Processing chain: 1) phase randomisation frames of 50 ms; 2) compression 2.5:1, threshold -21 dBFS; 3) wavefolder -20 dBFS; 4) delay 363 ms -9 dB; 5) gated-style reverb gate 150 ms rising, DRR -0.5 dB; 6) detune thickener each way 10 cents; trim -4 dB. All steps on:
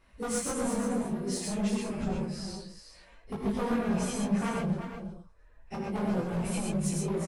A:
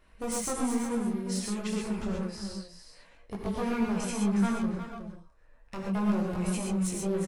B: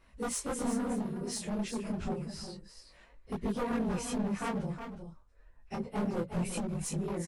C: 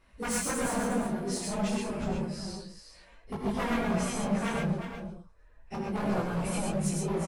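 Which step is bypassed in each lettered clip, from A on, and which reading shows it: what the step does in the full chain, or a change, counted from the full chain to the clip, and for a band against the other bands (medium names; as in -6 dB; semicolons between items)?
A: 1, 250 Hz band +1.5 dB; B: 5, loudness change -3.5 LU; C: 2, crest factor change +1.5 dB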